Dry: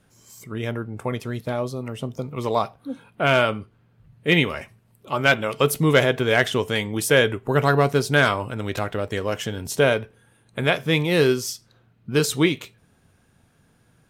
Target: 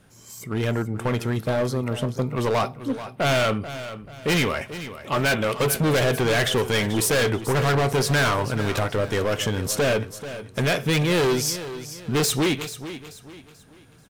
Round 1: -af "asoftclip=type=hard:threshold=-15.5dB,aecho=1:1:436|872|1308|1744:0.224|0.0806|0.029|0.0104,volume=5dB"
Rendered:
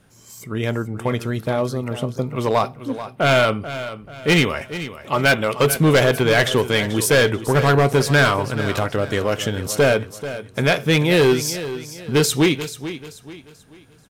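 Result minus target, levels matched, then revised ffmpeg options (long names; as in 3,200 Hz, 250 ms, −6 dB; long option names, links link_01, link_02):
hard clipping: distortion −6 dB
-af "asoftclip=type=hard:threshold=-23.5dB,aecho=1:1:436|872|1308|1744:0.224|0.0806|0.029|0.0104,volume=5dB"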